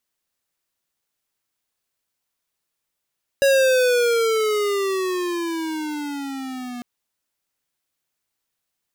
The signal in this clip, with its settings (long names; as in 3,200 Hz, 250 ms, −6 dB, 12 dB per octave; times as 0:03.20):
pitch glide with a swell square, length 3.40 s, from 556 Hz, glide −14.5 semitones, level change −17 dB, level −15 dB